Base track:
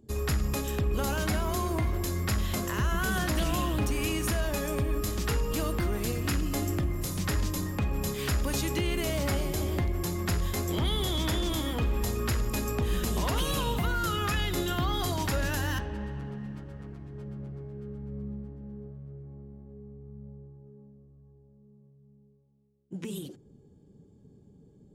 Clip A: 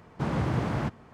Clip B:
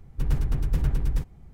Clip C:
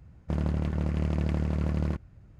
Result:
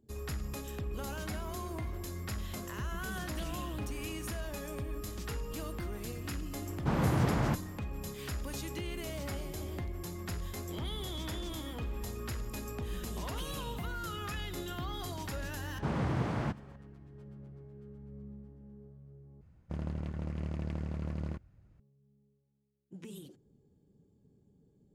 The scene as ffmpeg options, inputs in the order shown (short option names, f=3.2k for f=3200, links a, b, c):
-filter_complex "[1:a]asplit=2[a][b];[0:a]volume=-10dB,asplit=2[c][d];[c]atrim=end=19.414[e];[3:a]atrim=end=2.39,asetpts=PTS-STARTPTS,volume=-9dB[f];[d]atrim=start=21.796[g];[a]atrim=end=1.13,asetpts=PTS-STARTPTS,volume=-1dB,afade=t=in:d=0.004:c=hsin,afade=t=out:st=1.126:d=0.004:c=hsin,adelay=293706S[h];[b]atrim=end=1.13,asetpts=PTS-STARTPTS,volume=-4.5dB,afade=t=in:d=0.004:c=hsin,afade=t=out:st=1.126:d=0.004:c=hsin,adelay=15630[i];[e][f]acrossfade=d=0.004:c1=hsin:c2=hsin[j];[j][g]acrossfade=d=0.004:c1=hsin:c2=hsin[k];[k][h][i]amix=inputs=3:normalize=0"